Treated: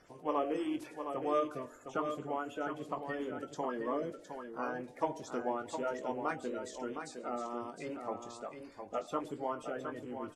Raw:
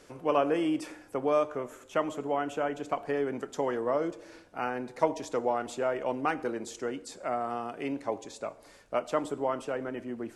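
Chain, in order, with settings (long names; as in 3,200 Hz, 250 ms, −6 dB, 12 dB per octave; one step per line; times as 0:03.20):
spectral magnitudes quantised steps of 30 dB
double-tracking delay 20 ms −9 dB
single-tap delay 712 ms −7.5 dB
level −7 dB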